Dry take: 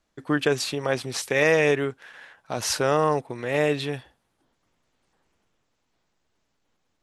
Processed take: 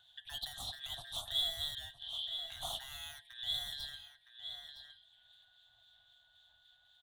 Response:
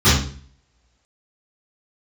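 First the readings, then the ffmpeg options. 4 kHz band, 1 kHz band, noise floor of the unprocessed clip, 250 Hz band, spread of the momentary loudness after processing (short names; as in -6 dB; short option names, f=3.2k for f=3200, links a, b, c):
-2.0 dB, -23.0 dB, -74 dBFS, under -35 dB, 14 LU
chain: -filter_complex "[0:a]afftfilt=real='real(if(lt(b,272),68*(eq(floor(b/68),0)*3+eq(floor(b/68),1)*0+eq(floor(b/68),2)*1+eq(floor(b/68),3)*2)+mod(b,68),b),0)':imag='imag(if(lt(b,272),68*(eq(floor(b/68),0)*3+eq(floor(b/68),1)*0+eq(floor(b/68),2)*1+eq(floor(b/68),3)*2)+mod(b,68),b),0)':win_size=2048:overlap=0.75,acrossover=split=2200[a][b];[a]aeval=exprs='val(0)*(1-0.5/2+0.5/2*cos(2*PI*3.8*n/s))':c=same[c];[b]aeval=exprs='val(0)*(1-0.5/2-0.5/2*cos(2*PI*3.8*n/s))':c=same[d];[c][d]amix=inputs=2:normalize=0,volume=27.5dB,asoftclip=hard,volume=-27.5dB,asplit=2[e][f];[f]aecho=0:1:963:0.126[g];[e][g]amix=inputs=2:normalize=0,acrossover=split=230|6400[h][i][j];[h]acompressor=threshold=-56dB:ratio=4[k];[i]acompressor=threshold=-42dB:ratio=4[l];[j]acompressor=threshold=-41dB:ratio=4[m];[k][l][m]amix=inputs=3:normalize=0,equalizer=f=8.1k:w=3.6:g=-5,bandreject=f=171.6:t=h:w=4,bandreject=f=343.2:t=h:w=4,bandreject=f=514.8:t=h:w=4,bandreject=f=686.4:t=h:w=4,bandreject=f=858:t=h:w=4,bandreject=f=1.0296k:t=h:w=4,bandreject=f=1.2012k:t=h:w=4,bandreject=f=1.3728k:t=h:w=4,bandreject=f=1.5444k:t=h:w=4,bandreject=f=1.716k:t=h:w=4,bandreject=f=1.8876k:t=h:w=4,bandreject=f=2.0592k:t=h:w=4,bandreject=f=2.2308k:t=h:w=4,bandreject=f=2.4024k:t=h:w=4,bandreject=f=2.574k:t=h:w=4,bandreject=f=2.7456k:t=h:w=4,bandreject=f=2.9172k:t=h:w=4,bandreject=f=3.0888k:t=h:w=4,bandreject=f=3.2604k:t=h:w=4,bandreject=f=3.432k:t=h:w=4,bandreject=f=3.6036k:t=h:w=4,bandreject=f=3.7752k:t=h:w=4,bandreject=f=3.9468k:t=h:w=4,bandreject=f=4.1184k:t=h:w=4,bandreject=f=4.29k:t=h:w=4,bandreject=f=4.4616k:t=h:w=4,bandreject=f=4.6332k:t=h:w=4,bandreject=f=4.8048k:t=h:w=4,bandreject=f=4.9764k:t=h:w=4,bandreject=f=5.148k:t=h:w=4,bandreject=f=5.3196k:t=h:w=4,asplit=2[n][o];[o]acompressor=mode=upward:threshold=-46dB:ratio=2.5,volume=-2.5dB[p];[n][p]amix=inputs=2:normalize=0,firequalizer=gain_entry='entry(110,0);entry(160,-12);entry(440,-29);entry(680,2);entry(980,-9);entry(2300,-27);entry(3500,11);entry(5100,-24);entry(8000,-11)':delay=0.05:min_phase=1,volume=1dB"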